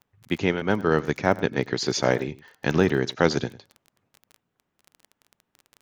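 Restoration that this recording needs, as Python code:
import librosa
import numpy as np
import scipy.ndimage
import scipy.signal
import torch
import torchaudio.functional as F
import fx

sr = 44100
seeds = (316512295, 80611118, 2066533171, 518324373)

y = fx.fix_declick_ar(x, sr, threshold=6.5)
y = fx.fix_echo_inverse(y, sr, delay_ms=101, level_db=-19.5)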